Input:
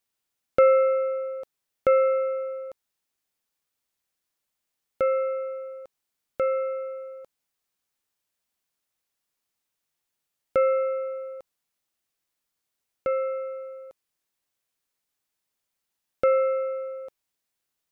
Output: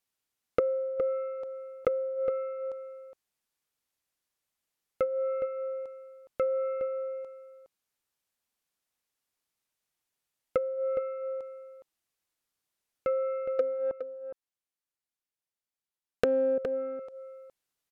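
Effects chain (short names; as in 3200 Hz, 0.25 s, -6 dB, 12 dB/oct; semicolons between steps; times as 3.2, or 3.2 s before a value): 13.59–16.58 sample leveller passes 5; treble ducked by the level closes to 330 Hz, closed at -19 dBFS; outdoor echo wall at 71 m, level -9 dB; gain -2.5 dB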